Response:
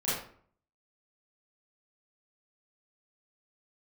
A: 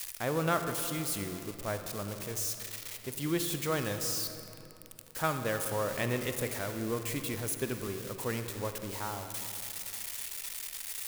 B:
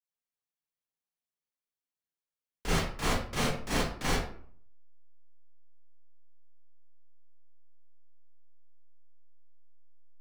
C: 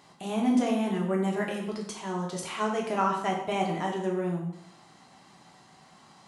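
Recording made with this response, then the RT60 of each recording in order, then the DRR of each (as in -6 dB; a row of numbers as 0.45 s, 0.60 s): B; 3.0 s, 0.55 s, 0.75 s; 7.0 dB, -11.5 dB, -1.5 dB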